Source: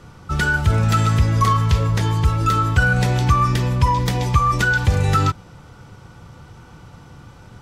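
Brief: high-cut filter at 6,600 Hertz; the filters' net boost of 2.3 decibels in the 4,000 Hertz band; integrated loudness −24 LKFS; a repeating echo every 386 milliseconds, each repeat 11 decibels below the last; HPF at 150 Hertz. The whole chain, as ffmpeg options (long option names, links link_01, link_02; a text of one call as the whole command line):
ffmpeg -i in.wav -af "highpass=150,lowpass=6600,equalizer=frequency=4000:width_type=o:gain=3.5,aecho=1:1:386|772|1158:0.282|0.0789|0.0221,volume=-3.5dB" out.wav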